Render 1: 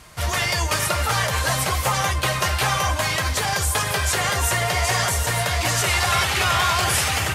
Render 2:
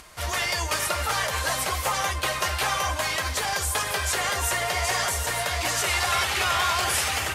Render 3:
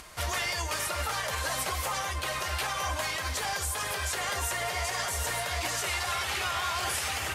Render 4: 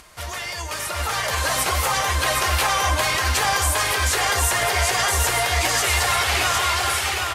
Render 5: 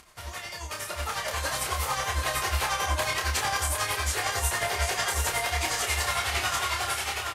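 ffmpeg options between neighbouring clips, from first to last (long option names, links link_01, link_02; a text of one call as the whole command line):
ffmpeg -i in.wav -af "acompressor=mode=upward:threshold=-40dB:ratio=2.5,equalizer=frequency=130:width_type=o:width=1.2:gain=-11,volume=-3.5dB" out.wav
ffmpeg -i in.wav -af "alimiter=limit=-21.5dB:level=0:latency=1:release=182" out.wav
ffmpeg -i in.wav -af "dynaudnorm=framelen=420:gausssize=5:maxgain=9.5dB,aecho=1:1:762:0.668" out.wav
ffmpeg -i in.wav -filter_complex "[0:a]tremolo=f=11:d=0.65,asplit=2[link_01][link_02];[link_02]adelay=29,volume=-5dB[link_03];[link_01][link_03]amix=inputs=2:normalize=0,volume=-6dB" out.wav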